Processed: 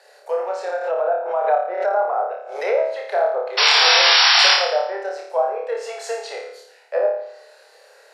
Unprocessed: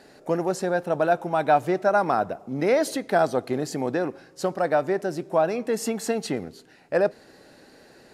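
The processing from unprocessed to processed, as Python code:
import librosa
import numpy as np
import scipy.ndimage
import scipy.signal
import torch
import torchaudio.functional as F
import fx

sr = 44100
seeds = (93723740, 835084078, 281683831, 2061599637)

y = scipy.signal.sosfilt(scipy.signal.butter(12, 440.0, 'highpass', fs=sr, output='sos'), x)
y = fx.env_lowpass_down(y, sr, base_hz=910.0, full_db=-19.5)
y = fx.spec_paint(y, sr, seeds[0], shape='noise', start_s=3.57, length_s=0.98, low_hz=660.0, high_hz=5700.0, level_db=-17.0)
y = fx.room_flutter(y, sr, wall_m=4.8, rt60_s=0.66)
y = fx.pre_swell(y, sr, db_per_s=72.0, at=(0.81, 2.95))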